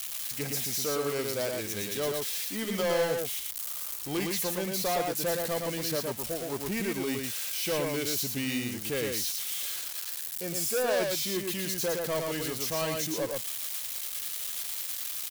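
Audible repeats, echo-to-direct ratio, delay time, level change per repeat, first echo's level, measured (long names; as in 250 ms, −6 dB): 1, −3.5 dB, 114 ms, repeats not evenly spaced, −3.5 dB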